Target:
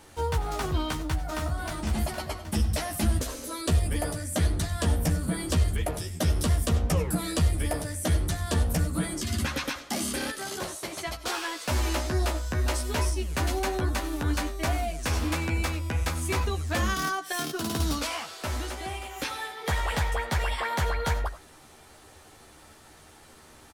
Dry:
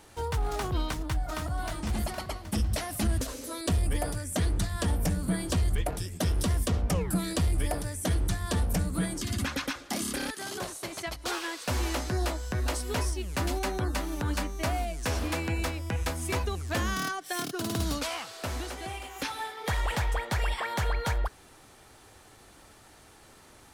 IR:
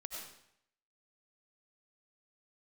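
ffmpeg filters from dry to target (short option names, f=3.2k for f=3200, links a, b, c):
-filter_complex "[0:a]asplit=2[a][b];[b]adelay=13,volume=-4.5dB[c];[a][c]amix=inputs=2:normalize=0,asplit=2[d][e];[1:a]atrim=start_sample=2205,afade=t=out:st=0.15:d=0.01,atrim=end_sample=7056[f];[e][f]afir=irnorm=-1:irlink=0,volume=-1.5dB[g];[d][g]amix=inputs=2:normalize=0,volume=-2.5dB"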